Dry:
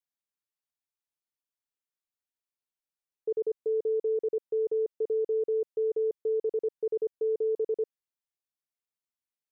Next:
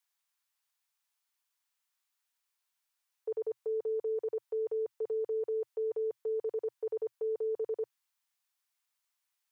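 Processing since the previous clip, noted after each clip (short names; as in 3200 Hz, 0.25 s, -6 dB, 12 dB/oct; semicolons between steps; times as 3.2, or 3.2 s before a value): EQ curve 120 Hz 0 dB, 190 Hz -29 dB, 330 Hz -8 dB, 940 Hz +13 dB; gain -3 dB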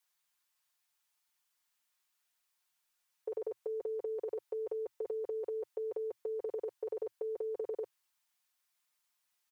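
comb 5.6 ms, depth 58%; gain +1.5 dB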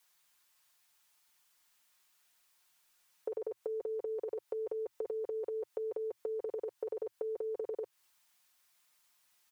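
compressor 6:1, threshold -45 dBFS, peak gain reduction 10.5 dB; gain +9 dB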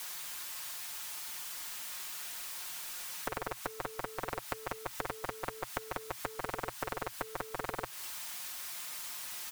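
spectral compressor 10:1; gain +10 dB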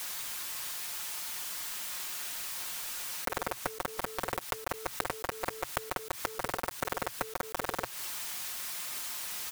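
block floating point 3-bit; gain +3.5 dB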